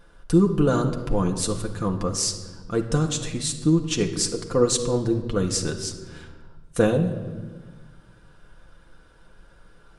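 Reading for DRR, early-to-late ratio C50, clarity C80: 2.0 dB, 9.0 dB, 11.5 dB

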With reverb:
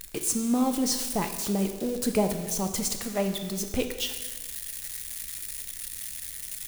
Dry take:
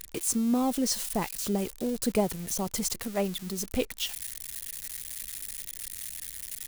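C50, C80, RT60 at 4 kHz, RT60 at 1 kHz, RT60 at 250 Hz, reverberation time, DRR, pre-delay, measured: 8.0 dB, 10.0 dB, 1.2 s, 1.3 s, 1.4 s, 1.3 s, 5.5 dB, 5 ms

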